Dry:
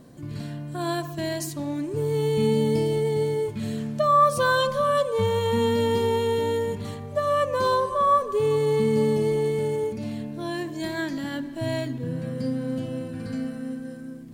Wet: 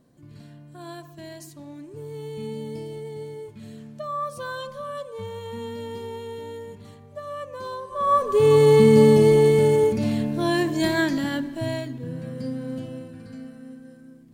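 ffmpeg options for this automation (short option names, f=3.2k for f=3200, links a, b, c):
-af "volume=8dB,afade=t=in:st=7.88:d=0.19:silence=0.316228,afade=t=in:st=8.07:d=0.53:silence=0.334965,afade=t=out:st=10.82:d=1.02:silence=0.281838,afade=t=out:st=12.78:d=0.48:silence=0.501187"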